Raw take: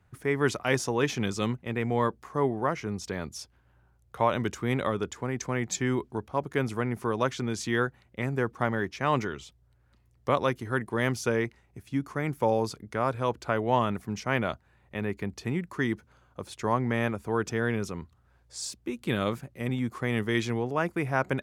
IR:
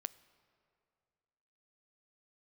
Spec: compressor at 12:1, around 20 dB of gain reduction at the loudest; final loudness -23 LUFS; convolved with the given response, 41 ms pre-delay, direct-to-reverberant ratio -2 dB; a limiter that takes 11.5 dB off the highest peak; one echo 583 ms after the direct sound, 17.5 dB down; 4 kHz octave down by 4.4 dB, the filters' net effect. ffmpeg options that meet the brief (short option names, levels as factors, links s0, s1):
-filter_complex "[0:a]equalizer=f=4000:t=o:g=-6,acompressor=threshold=0.01:ratio=12,alimiter=level_in=3.35:limit=0.0631:level=0:latency=1,volume=0.299,aecho=1:1:583:0.133,asplit=2[s0][s1];[1:a]atrim=start_sample=2205,adelay=41[s2];[s1][s2]afir=irnorm=-1:irlink=0,volume=1.78[s3];[s0][s3]amix=inputs=2:normalize=0,volume=10.6"